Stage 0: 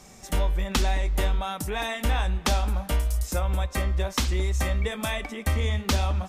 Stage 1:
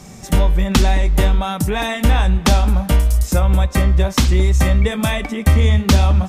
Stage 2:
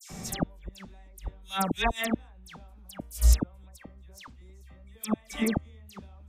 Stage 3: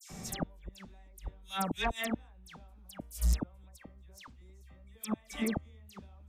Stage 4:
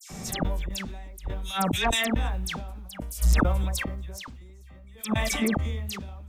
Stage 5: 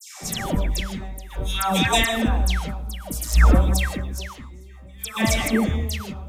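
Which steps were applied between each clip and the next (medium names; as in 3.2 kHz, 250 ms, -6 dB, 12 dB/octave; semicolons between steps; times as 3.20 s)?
peaking EQ 140 Hz +9.5 dB 1.9 oct; trim +7.5 dB
inverted gate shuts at -8 dBFS, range -35 dB; phase dispersion lows, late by 102 ms, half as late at 2.3 kHz; trim -2.5 dB
saturation -17 dBFS, distortion -13 dB; trim -4.5 dB
decay stretcher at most 25 dB/s; trim +6.5 dB
phase dispersion lows, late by 121 ms, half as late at 930 Hz; on a send at -10.5 dB: reverberation, pre-delay 3 ms; on the sum: trim +5 dB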